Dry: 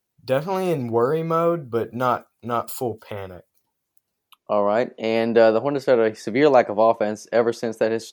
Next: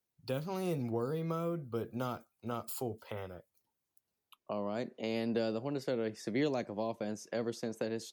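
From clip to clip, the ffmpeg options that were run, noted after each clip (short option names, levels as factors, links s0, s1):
-filter_complex "[0:a]acrossover=split=310|3000[s0][s1][s2];[s1]acompressor=threshold=0.0355:ratio=6[s3];[s0][s3][s2]amix=inputs=3:normalize=0,volume=0.355"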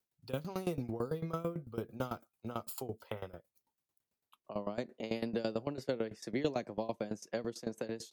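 -af "aeval=exprs='val(0)*pow(10,-18*if(lt(mod(9*n/s,1),2*abs(9)/1000),1-mod(9*n/s,1)/(2*abs(9)/1000),(mod(9*n/s,1)-2*abs(9)/1000)/(1-2*abs(9)/1000))/20)':c=same,volume=1.58"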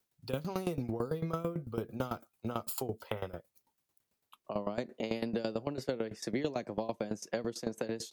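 -af "acompressor=threshold=0.0126:ratio=3,volume=2.11"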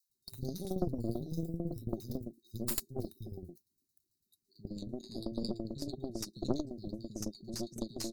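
-filter_complex "[0:a]acrossover=split=180|810[s0][s1][s2];[s0]adelay=90[s3];[s1]adelay=150[s4];[s3][s4][s2]amix=inputs=3:normalize=0,afftfilt=real='re*(1-between(b*sr/4096,400,3700))':imag='im*(1-between(b*sr/4096,400,3700))':win_size=4096:overlap=0.75,aeval=exprs='0.0708*(cos(1*acos(clip(val(0)/0.0708,-1,1)))-cos(1*PI/2))+0.0178*(cos(3*acos(clip(val(0)/0.0708,-1,1)))-cos(3*PI/2))+0.01*(cos(4*acos(clip(val(0)/0.0708,-1,1)))-cos(4*PI/2))+0.00224*(cos(5*acos(clip(val(0)/0.0708,-1,1)))-cos(5*PI/2))':c=same,volume=2.51"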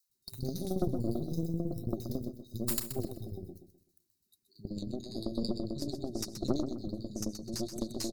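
-af "asoftclip=type=tanh:threshold=0.15,aecho=1:1:127|254|381|508:0.355|0.114|0.0363|0.0116,volume=1.41"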